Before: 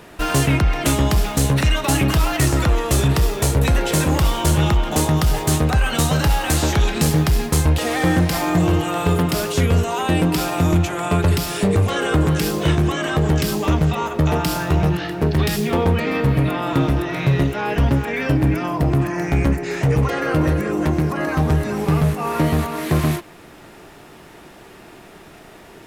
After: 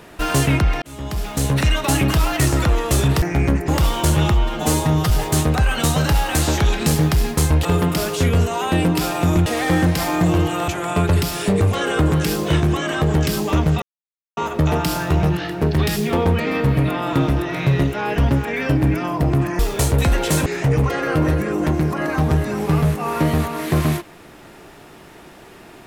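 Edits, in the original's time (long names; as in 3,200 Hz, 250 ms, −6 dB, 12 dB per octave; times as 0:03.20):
0:00.82–0:01.62: fade in
0:03.22–0:04.09: swap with 0:19.19–0:19.65
0:04.73–0:05.25: time-stretch 1.5×
0:07.80–0:09.02: move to 0:10.83
0:13.97: splice in silence 0.55 s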